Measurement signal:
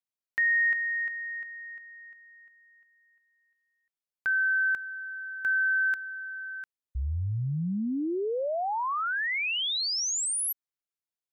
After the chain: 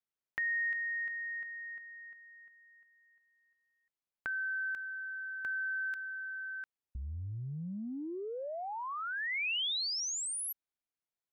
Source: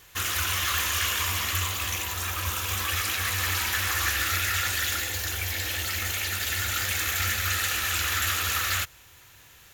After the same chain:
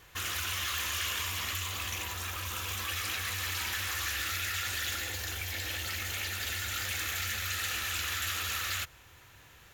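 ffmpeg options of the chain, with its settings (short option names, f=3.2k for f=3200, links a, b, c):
-filter_complex "[0:a]highshelf=f=3.6k:g=-9,acrossover=split=2500[a][b];[a]acompressor=threshold=-40dB:ratio=6:attack=6.9:release=41:knee=6:detection=peak[c];[c][b]amix=inputs=2:normalize=0"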